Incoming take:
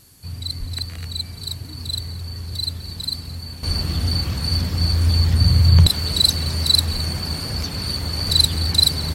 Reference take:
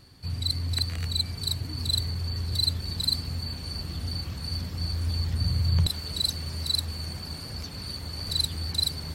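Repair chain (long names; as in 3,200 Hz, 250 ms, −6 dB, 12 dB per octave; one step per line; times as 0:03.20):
high-pass at the plosives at 0:00.59/0:03.67/0:06.92
downward expander −25 dBFS, range −21 dB
echo removal 215 ms −20 dB
level correction −11 dB, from 0:03.63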